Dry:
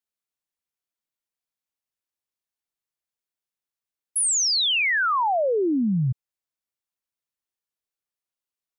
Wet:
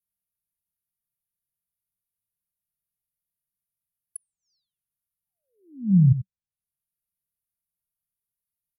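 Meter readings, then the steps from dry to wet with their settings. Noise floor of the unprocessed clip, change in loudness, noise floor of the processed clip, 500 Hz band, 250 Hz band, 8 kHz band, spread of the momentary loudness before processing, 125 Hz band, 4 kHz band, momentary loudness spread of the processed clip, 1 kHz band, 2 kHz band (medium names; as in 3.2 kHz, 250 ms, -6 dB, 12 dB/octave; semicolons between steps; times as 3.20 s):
under -85 dBFS, +1.0 dB, under -85 dBFS, under -40 dB, +1.0 dB, -25.0 dB, 9 LU, +7.0 dB, under -40 dB, 11 LU, under -40 dB, under -40 dB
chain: Chebyshev band-stop 190–9600 Hz, order 5; echo from a far wall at 15 m, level -12 dB; low-pass that closes with the level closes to 370 Hz, closed at -27.5 dBFS; trim +7.5 dB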